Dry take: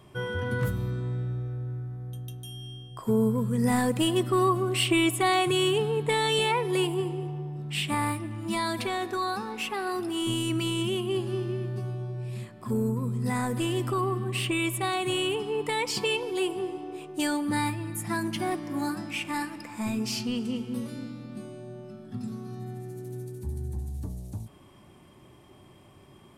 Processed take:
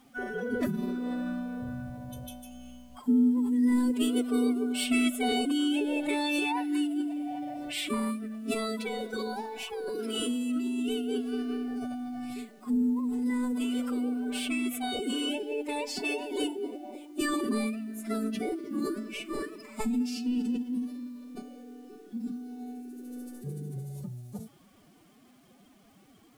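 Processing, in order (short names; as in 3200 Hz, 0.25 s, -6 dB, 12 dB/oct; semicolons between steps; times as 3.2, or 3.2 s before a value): dynamic EQ 200 Hz, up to +8 dB, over -42 dBFS, Q 1.1; formant-preserving pitch shift +12 st; bit-crush 10-bit; gain -5 dB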